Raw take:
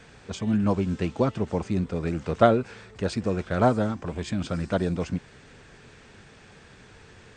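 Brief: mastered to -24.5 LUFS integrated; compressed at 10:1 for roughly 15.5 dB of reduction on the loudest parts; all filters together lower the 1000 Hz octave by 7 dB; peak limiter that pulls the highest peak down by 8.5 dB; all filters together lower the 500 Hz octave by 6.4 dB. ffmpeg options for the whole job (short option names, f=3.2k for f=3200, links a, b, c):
-af "equalizer=f=500:t=o:g=-5.5,equalizer=f=1k:t=o:g=-8.5,acompressor=threshold=-33dB:ratio=10,volume=17.5dB,alimiter=limit=-12.5dB:level=0:latency=1"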